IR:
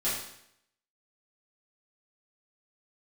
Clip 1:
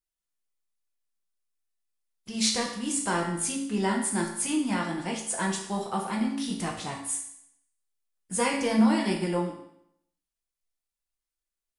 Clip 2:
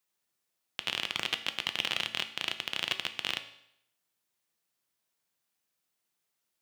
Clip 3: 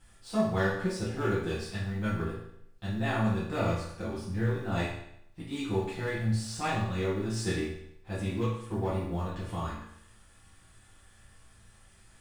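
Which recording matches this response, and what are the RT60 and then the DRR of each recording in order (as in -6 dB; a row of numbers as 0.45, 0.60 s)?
3; 0.75, 0.75, 0.75 s; -1.0, 8.5, -11.0 dB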